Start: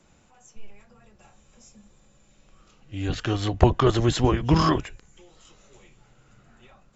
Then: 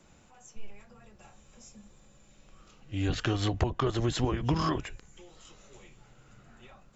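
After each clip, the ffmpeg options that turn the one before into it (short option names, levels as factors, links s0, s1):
-af "acompressor=threshold=0.0631:ratio=10"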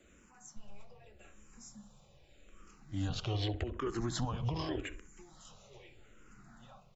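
-filter_complex "[0:a]asplit=2[s0][s1];[s1]adelay=66,lowpass=f=1700:p=1,volume=0.2,asplit=2[s2][s3];[s3]adelay=66,lowpass=f=1700:p=1,volume=0.48,asplit=2[s4][s5];[s5]adelay=66,lowpass=f=1700:p=1,volume=0.48,asplit=2[s6][s7];[s7]adelay=66,lowpass=f=1700:p=1,volume=0.48,asplit=2[s8][s9];[s9]adelay=66,lowpass=f=1700:p=1,volume=0.48[s10];[s0][s2][s4][s6][s8][s10]amix=inputs=6:normalize=0,alimiter=limit=0.075:level=0:latency=1:release=149,asplit=2[s11][s12];[s12]afreqshift=-0.83[s13];[s11][s13]amix=inputs=2:normalize=1"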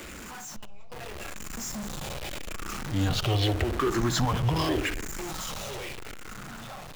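-af "aeval=exprs='val(0)+0.5*0.0133*sgn(val(0))':c=same,dynaudnorm=f=200:g=13:m=2.24,equalizer=f=1500:t=o:w=2.3:g=3"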